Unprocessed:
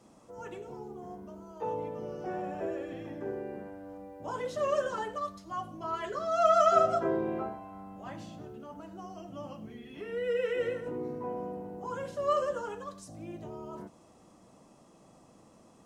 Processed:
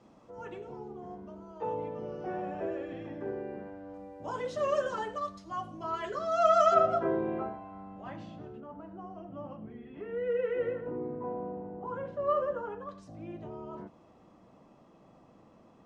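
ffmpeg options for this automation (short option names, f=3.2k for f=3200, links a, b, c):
-af "asetnsamples=n=441:p=0,asendcmd='3.94 lowpass f 6800;6.74 lowpass f 3300;8.6 lowpass f 1600;12.89 lowpass f 3100',lowpass=4k"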